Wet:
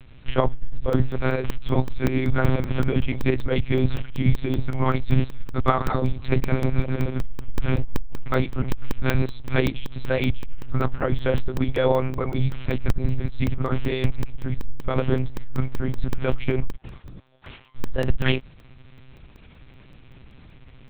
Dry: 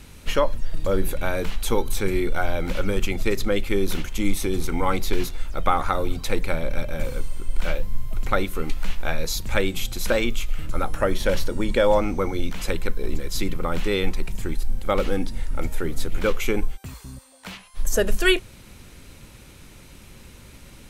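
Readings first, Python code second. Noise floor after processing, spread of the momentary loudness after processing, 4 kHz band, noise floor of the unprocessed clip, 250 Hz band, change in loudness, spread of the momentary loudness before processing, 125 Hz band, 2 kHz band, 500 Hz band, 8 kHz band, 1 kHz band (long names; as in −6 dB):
−48 dBFS, 9 LU, −6.0 dB, −47 dBFS, +2.0 dB, +0.5 dB, 12 LU, +8.0 dB, −3.0 dB, −1.5 dB, below −15 dB, −2.0 dB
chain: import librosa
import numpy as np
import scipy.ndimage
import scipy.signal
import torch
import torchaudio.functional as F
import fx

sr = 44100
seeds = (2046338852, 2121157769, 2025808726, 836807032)

y = fx.low_shelf(x, sr, hz=170.0, db=5.5)
y = fx.lpc_monotone(y, sr, seeds[0], pitch_hz=130.0, order=8)
y = fx.buffer_crackle(y, sr, first_s=0.93, period_s=0.19, block=64, kind='zero')
y = y * librosa.db_to_amplitude(-5.0)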